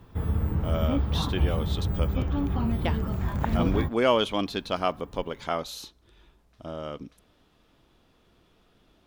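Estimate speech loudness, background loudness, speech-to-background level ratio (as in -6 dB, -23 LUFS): -30.5 LUFS, -28.0 LUFS, -2.5 dB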